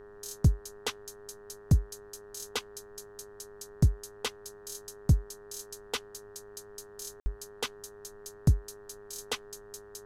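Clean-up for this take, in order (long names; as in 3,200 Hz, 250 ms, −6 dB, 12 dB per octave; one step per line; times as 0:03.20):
hum removal 103.5 Hz, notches 18
notch filter 410 Hz, Q 30
ambience match 0:07.20–0:07.26
downward expander −43 dBFS, range −21 dB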